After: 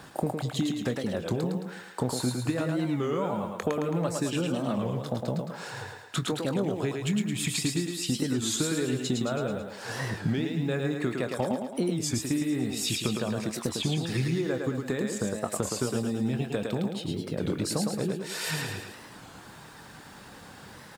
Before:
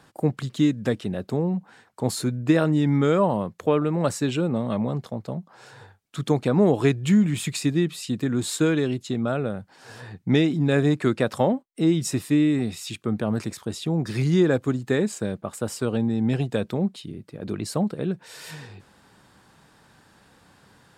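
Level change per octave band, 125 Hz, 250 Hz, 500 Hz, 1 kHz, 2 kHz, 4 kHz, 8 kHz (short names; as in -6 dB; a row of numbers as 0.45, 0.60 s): -5.5, -6.5, -6.0, -4.5, -3.0, +1.0, +2.0 dB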